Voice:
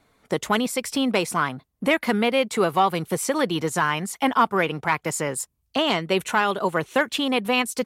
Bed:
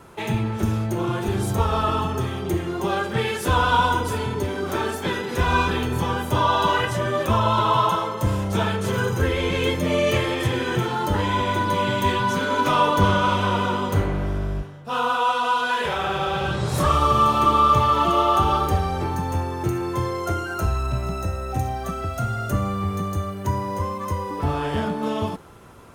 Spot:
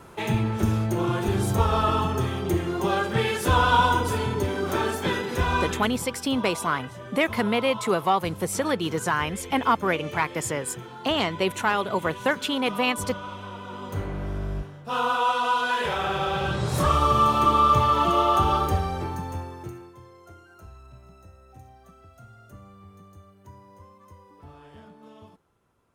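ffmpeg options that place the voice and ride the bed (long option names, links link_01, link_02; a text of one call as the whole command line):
ffmpeg -i stem1.wav -i stem2.wav -filter_complex "[0:a]adelay=5300,volume=-2.5dB[link_01];[1:a]volume=14dB,afade=type=out:start_time=5.15:duration=0.93:silence=0.158489,afade=type=in:start_time=13.64:duration=1.13:silence=0.188365,afade=type=out:start_time=18.61:duration=1.33:silence=0.0841395[link_02];[link_01][link_02]amix=inputs=2:normalize=0" out.wav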